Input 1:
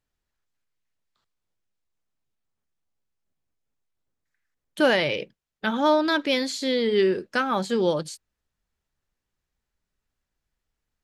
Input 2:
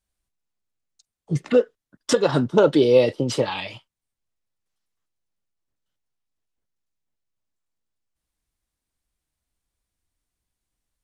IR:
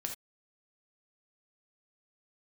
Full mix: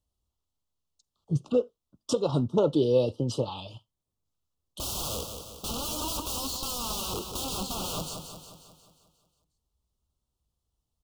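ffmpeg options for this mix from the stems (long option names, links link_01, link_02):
-filter_complex "[0:a]lowshelf=frequency=74:gain=-11.5,aeval=exprs='(mod(17.8*val(0)+1,2)-1)/17.8':channel_layout=same,volume=-3.5dB,asplit=2[link_01][link_02];[link_02]volume=-7dB[link_03];[1:a]volume=-9dB,asplit=2[link_04][link_05];[link_05]volume=-22.5dB[link_06];[2:a]atrim=start_sample=2205[link_07];[link_06][link_07]afir=irnorm=-1:irlink=0[link_08];[link_03]aecho=0:1:179|358|537|716|895|1074|1253|1432:1|0.55|0.303|0.166|0.0915|0.0503|0.0277|0.0152[link_09];[link_01][link_04][link_08][link_09]amix=inputs=4:normalize=0,asuperstop=centerf=1900:order=8:qfactor=1.2,equalizer=frequency=65:width_type=o:width=2:gain=13"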